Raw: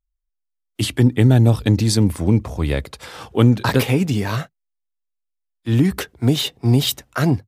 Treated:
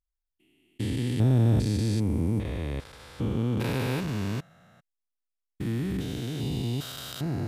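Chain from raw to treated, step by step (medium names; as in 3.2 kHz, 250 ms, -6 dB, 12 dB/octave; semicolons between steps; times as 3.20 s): spectrogram pixelated in time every 400 ms; trim -7 dB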